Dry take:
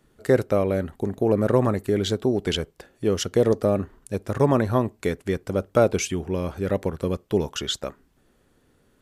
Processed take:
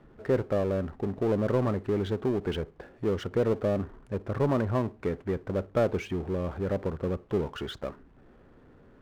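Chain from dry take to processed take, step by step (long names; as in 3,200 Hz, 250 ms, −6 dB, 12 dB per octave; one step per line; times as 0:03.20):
low-pass filter 1,600 Hz 12 dB per octave
power curve on the samples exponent 0.7
level −9 dB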